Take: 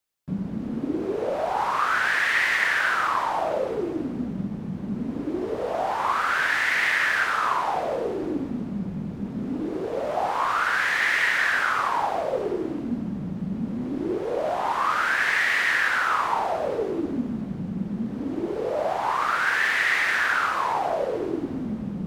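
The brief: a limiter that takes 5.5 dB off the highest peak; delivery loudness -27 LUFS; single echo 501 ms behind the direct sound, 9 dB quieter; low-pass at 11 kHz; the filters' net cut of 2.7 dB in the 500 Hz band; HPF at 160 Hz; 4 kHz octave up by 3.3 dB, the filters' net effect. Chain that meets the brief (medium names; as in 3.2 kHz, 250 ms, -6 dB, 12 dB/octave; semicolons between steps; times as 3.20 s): high-pass 160 Hz; low-pass 11 kHz; peaking EQ 500 Hz -3.5 dB; peaking EQ 4 kHz +4.5 dB; peak limiter -14.5 dBFS; delay 501 ms -9 dB; trim -2 dB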